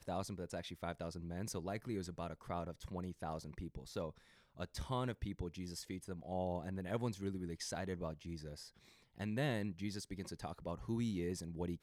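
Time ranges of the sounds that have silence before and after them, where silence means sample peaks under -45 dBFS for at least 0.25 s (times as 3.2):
4.59–8.66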